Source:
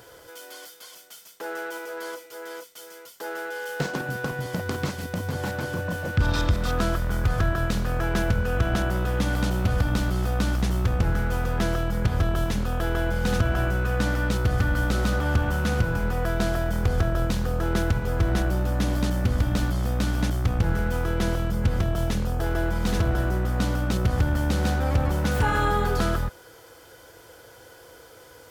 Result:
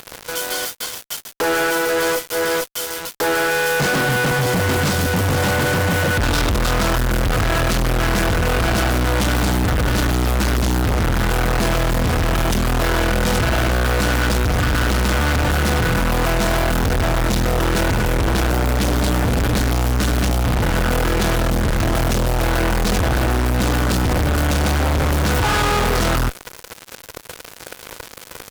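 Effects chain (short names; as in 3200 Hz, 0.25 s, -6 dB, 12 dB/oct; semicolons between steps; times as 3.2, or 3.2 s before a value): fuzz box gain 46 dB, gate -43 dBFS; gain -3 dB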